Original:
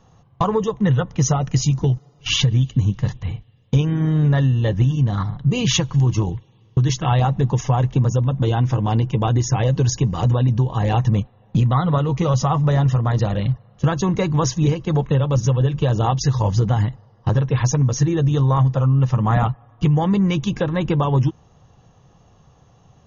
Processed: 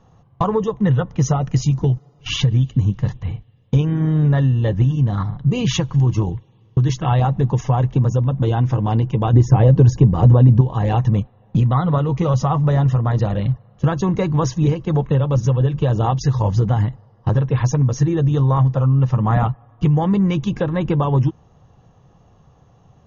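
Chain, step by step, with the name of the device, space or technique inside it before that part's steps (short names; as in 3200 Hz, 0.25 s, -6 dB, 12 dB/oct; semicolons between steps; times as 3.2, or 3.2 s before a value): 9.33–10.61 tilt shelf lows +6 dB, about 1400 Hz; behind a face mask (high shelf 2500 Hz -8 dB); gain +1 dB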